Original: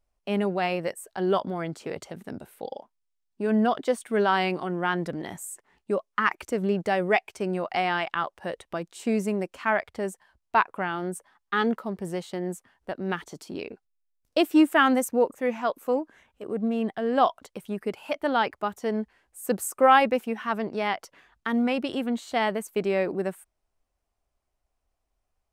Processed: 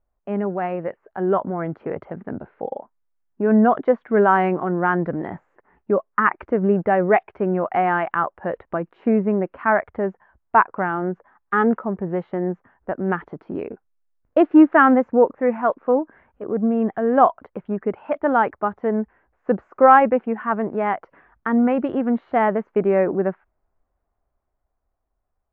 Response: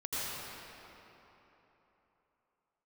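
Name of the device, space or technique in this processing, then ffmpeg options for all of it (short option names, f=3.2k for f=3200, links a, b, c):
action camera in a waterproof case: -af "lowpass=f=1.7k:w=0.5412,lowpass=f=1.7k:w=1.3066,dynaudnorm=f=180:g=17:m=5.5dB,volume=2dB" -ar 16000 -c:a aac -b:a 64k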